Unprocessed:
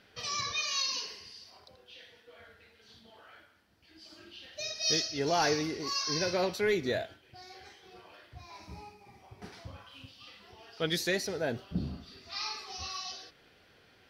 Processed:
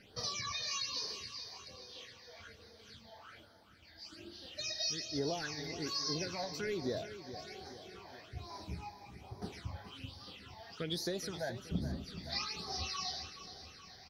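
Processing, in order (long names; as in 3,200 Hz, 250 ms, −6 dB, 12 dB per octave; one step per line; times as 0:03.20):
downward compressor 12 to 1, threshold −36 dBFS, peak gain reduction 13 dB
all-pass phaser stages 8, 1.2 Hz, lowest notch 350–2,700 Hz
repeating echo 424 ms, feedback 56%, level −12 dB
level +3.5 dB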